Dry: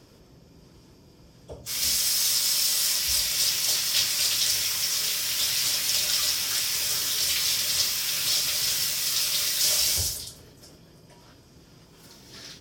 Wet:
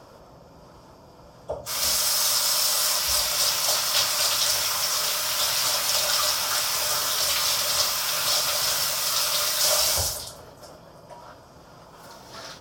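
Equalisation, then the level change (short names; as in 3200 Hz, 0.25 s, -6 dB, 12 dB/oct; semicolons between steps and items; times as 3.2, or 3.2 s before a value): band shelf 870 Hz +13 dB; +1.0 dB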